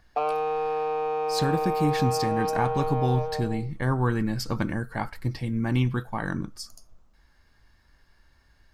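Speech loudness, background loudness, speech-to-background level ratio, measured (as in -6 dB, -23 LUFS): -28.0 LUFS, -28.0 LUFS, 0.0 dB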